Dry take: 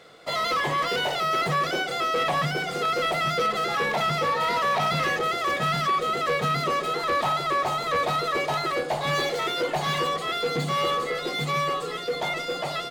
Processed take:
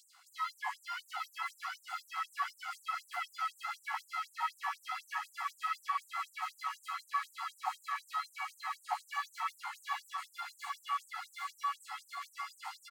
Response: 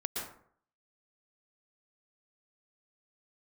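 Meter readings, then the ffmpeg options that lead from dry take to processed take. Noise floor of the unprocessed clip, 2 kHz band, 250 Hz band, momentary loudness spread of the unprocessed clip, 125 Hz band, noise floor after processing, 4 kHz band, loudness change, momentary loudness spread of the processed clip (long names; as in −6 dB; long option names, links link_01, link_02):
−33 dBFS, −14.5 dB, below −40 dB, 4 LU, below −40 dB, −66 dBFS, −19.0 dB, −14.5 dB, 7 LU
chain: -filter_complex "[0:a]bandreject=frequency=3600:width=6.3,acrossover=split=2700[link_01][link_02];[link_02]acompressor=threshold=-49dB:ratio=4:attack=1:release=60[link_03];[link_01][link_03]amix=inputs=2:normalize=0,equalizer=frequency=2200:width=0.49:gain=-10.5,areverse,acompressor=mode=upward:threshold=-35dB:ratio=2.5,areverse,flanger=delay=15:depth=4.1:speed=0.73,aecho=1:1:722|1444|2166|2888|3610|4332|5054|5776:0.422|0.253|0.152|0.0911|0.0547|0.0328|0.0197|0.0118,afftfilt=real='re*gte(b*sr/1024,690*pow(7400/690,0.5+0.5*sin(2*PI*4*pts/sr)))':imag='im*gte(b*sr/1024,690*pow(7400/690,0.5+0.5*sin(2*PI*4*pts/sr)))':win_size=1024:overlap=0.75,volume=3dB"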